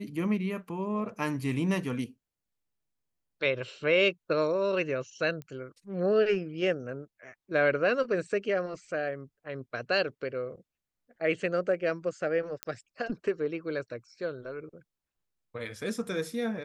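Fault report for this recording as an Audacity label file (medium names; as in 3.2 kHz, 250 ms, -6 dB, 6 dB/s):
5.420000	5.420000	pop -28 dBFS
12.630000	12.630000	pop -16 dBFS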